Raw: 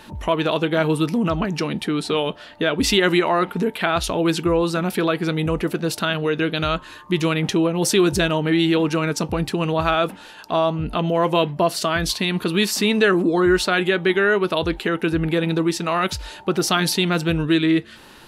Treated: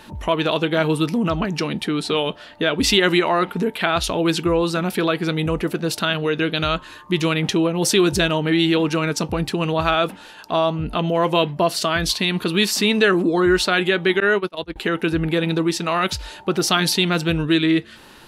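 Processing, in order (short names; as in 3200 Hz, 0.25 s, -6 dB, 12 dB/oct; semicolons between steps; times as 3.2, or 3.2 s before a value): 14.2–14.76 gate -18 dBFS, range -30 dB; dynamic EQ 3700 Hz, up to +3 dB, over -33 dBFS, Q 0.81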